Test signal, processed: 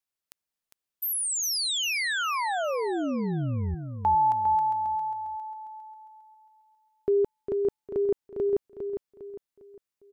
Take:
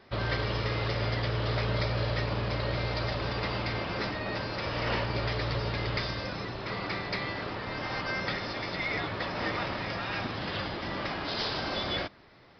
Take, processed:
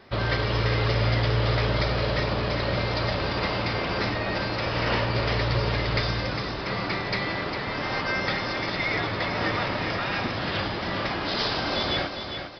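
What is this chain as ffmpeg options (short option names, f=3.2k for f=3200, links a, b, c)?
-af "aecho=1:1:404|808|1212|1616:0.422|0.156|0.0577|0.0214,volume=5dB"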